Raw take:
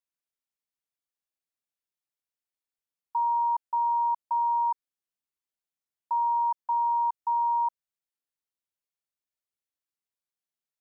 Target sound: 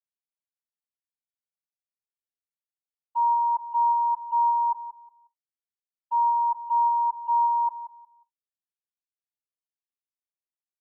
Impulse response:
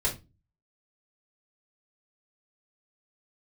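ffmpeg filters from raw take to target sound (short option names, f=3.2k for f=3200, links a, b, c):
-filter_complex "[0:a]agate=range=-33dB:threshold=-22dB:ratio=3:detection=peak,aecho=1:1:181|362|543:0.224|0.0537|0.0129,asplit=2[a][b];[1:a]atrim=start_sample=2205,afade=t=out:st=0.13:d=0.01,atrim=end_sample=6174[c];[b][c]afir=irnorm=-1:irlink=0,volume=-11dB[d];[a][d]amix=inputs=2:normalize=0"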